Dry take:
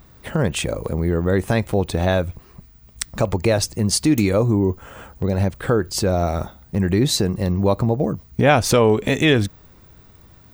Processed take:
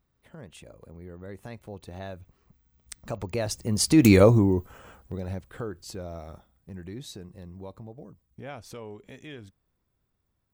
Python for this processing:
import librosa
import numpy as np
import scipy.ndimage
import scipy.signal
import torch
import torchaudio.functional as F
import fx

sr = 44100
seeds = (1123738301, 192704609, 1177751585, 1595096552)

y = fx.doppler_pass(x, sr, speed_mps=11, closest_m=1.7, pass_at_s=4.16)
y = y * librosa.db_to_amplitude(3.0)